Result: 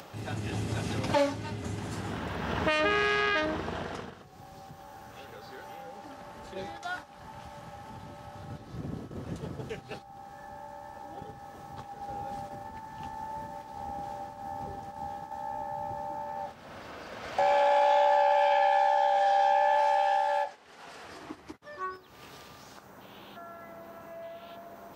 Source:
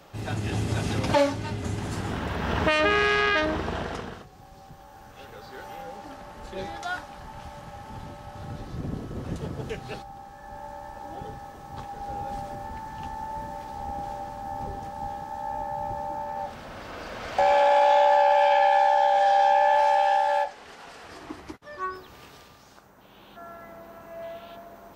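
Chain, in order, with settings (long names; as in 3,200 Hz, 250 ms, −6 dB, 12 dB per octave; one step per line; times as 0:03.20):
high-pass filter 79 Hz 12 dB per octave
noise gate −36 dBFS, range −7 dB
upward compression, threshold −31 dBFS
level −4.5 dB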